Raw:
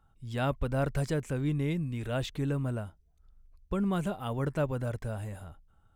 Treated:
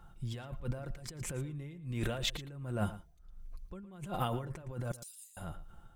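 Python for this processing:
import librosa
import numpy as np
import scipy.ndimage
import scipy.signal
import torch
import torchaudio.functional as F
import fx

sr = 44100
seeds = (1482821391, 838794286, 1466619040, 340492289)

y = fx.cheby2_highpass(x, sr, hz=860.0, order=4, stop_db=80, at=(4.91, 5.37))
y = y + 0.47 * np.pad(y, (int(5.7 * sr / 1000.0), 0))[:len(y)]
y = fx.over_compress(y, sr, threshold_db=-39.0, ratio=-1.0)
y = y * (1.0 - 0.63 / 2.0 + 0.63 / 2.0 * np.cos(2.0 * np.pi * 1.4 * (np.arange(len(y)) / sr)))
y = y + 10.0 ** (-15.5 / 20.0) * np.pad(y, (int(114 * sr / 1000.0), 0))[:len(y)]
y = y * librosa.db_to_amplitude(2.5)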